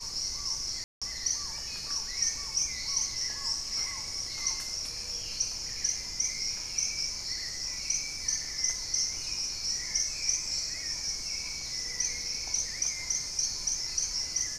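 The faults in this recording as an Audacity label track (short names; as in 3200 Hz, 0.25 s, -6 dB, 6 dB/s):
0.840000	1.020000	gap 0.176 s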